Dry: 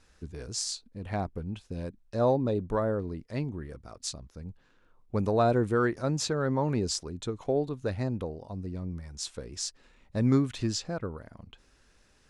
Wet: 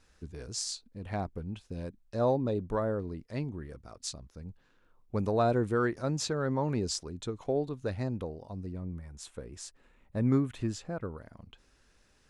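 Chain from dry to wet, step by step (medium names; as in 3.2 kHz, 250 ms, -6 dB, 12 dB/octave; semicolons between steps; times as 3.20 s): 8.72–11.01 s: peaking EQ 5 kHz -11 dB 1.2 oct; trim -2.5 dB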